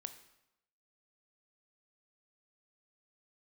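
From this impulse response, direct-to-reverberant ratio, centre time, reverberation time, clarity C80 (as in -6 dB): 9.0 dB, 9 ms, 0.90 s, 14.0 dB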